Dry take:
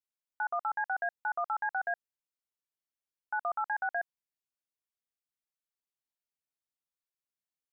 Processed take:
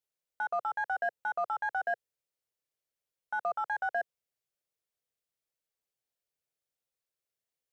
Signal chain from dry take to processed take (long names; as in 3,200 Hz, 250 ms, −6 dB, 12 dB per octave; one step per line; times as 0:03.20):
octave-band graphic EQ 125/250/500/1,000 Hz +5/−6/+9/−4 dB
in parallel at −11 dB: soft clipping −40 dBFS, distortion −7 dB